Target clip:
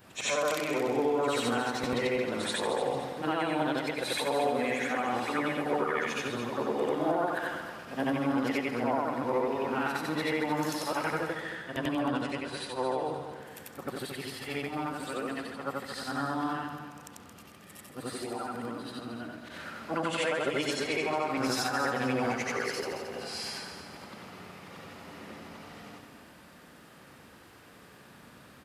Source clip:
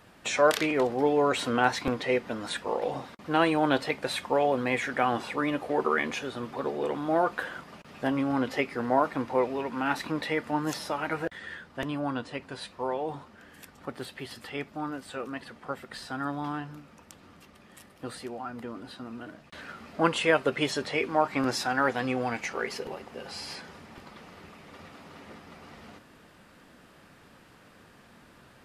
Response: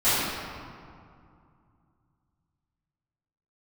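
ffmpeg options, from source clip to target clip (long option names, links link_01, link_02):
-filter_complex "[0:a]afftfilt=real='re':imag='-im':win_size=8192:overlap=0.75,highpass=62,highshelf=frequency=11000:gain=8.5,alimiter=level_in=0.5dB:limit=-24dB:level=0:latency=1:release=334,volume=-0.5dB,asplit=2[link_01][link_02];[link_02]aecho=0:1:223|446|669|892:0.335|0.131|0.0509|0.0199[link_03];[link_01][link_03]amix=inputs=2:normalize=0,volume=5.5dB"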